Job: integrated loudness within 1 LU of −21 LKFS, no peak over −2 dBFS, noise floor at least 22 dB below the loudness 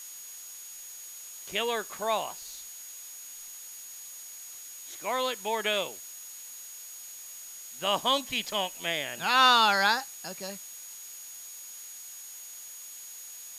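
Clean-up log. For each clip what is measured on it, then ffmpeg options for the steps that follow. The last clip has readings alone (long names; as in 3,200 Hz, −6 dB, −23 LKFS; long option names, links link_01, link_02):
interfering tone 6,700 Hz; level of the tone −44 dBFS; background noise floor −45 dBFS; target noise floor −50 dBFS; integrated loudness −27.5 LKFS; sample peak −9.0 dBFS; target loudness −21.0 LKFS
→ -af "bandreject=frequency=6700:width=30"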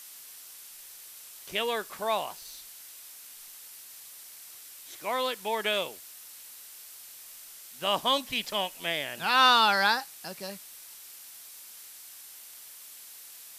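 interfering tone none found; background noise floor −48 dBFS; target noise floor −50 dBFS
→ -af "afftdn=noise_reduction=6:noise_floor=-48"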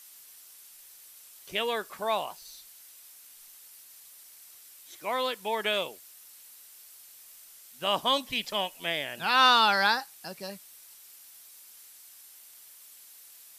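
background noise floor −52 dBFS; integrated loudness −27.0 LKFS; sample peak −9.0 dBFS; target loudness −21.0 LKFS
→ -af "volume=6dB"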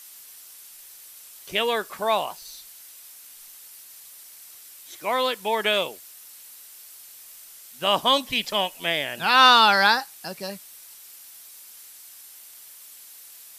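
integrated loudness −21.0 LKFS; sample peak −3.0 dBFS; background noise floor −46 dBFS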